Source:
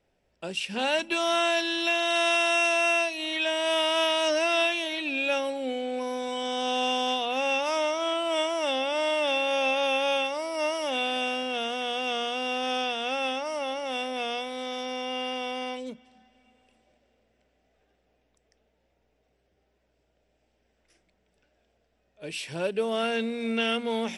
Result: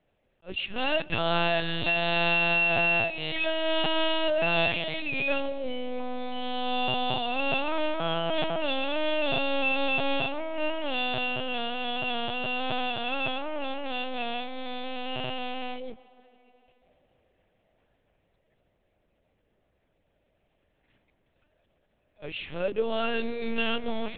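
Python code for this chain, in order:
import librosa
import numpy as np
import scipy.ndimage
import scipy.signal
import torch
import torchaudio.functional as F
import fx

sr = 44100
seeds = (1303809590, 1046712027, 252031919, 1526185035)

y = fx.lpc_vocoder(x, sr, seeds[0], excitation='pitch_kept', order=8)
y = fx.echo_tape(y, sr, ms=142, feedback_pct=84, wet_db=-22.0, lp_hz=1800.0, drive_db=10.0, wow_cents=28)
y = fx.attack_slew(y, sr, db_per_s=420.0)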